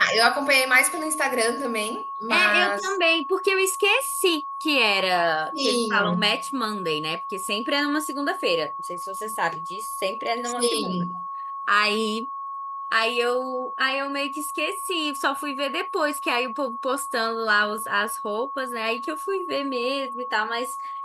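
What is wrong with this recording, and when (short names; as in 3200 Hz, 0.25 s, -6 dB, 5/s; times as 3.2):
tone 1100 Hz -30 dBFS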